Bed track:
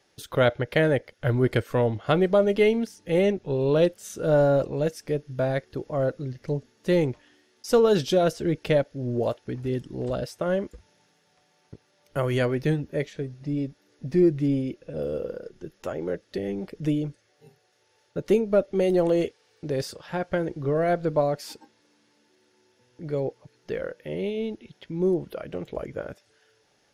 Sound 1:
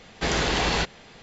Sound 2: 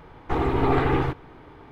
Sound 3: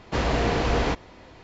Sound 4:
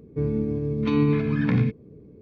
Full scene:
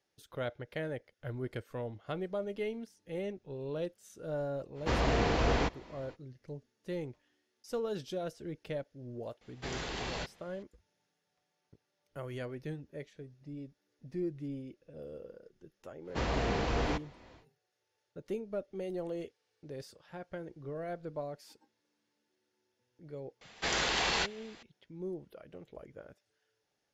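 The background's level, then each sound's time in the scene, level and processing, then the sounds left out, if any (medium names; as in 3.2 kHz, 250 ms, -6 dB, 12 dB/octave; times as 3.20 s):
bed track -16.5 dB
4.74 s: add 3 -5.5 dB, fades 0.05 s
9.41 s: add 1 -15 dB
16.03 s: add 3 -8.5 dB, fades 0.10 s
23.41 s: add 1 -4.5 dB + bass shelf 460 Hz -11.5 dB
not used: 2, 4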